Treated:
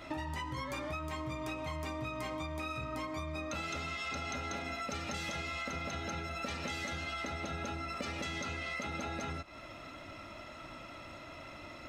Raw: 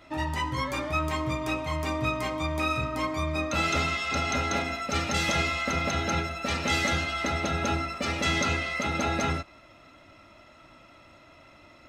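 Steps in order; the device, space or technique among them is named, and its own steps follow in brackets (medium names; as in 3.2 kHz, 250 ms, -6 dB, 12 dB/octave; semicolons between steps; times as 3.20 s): serial compression, leveller first (compression 3:1, threshold -30 dBFS, peak gain reduction 6.5 dB; compression 6:1, threshold -42 dBFS, peak gain reduction 13.5 dB); trim +5 dB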